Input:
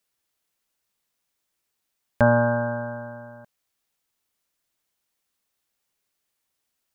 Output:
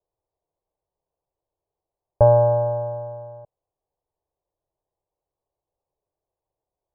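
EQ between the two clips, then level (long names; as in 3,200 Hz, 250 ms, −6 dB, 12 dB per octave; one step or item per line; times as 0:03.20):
Butterworth low-pass 1,400 Hz 72 dB per octave
high-frequency loss of the air 440 metres
phaser with its sweep stopped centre 560 Hz, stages 4
+7.5 dB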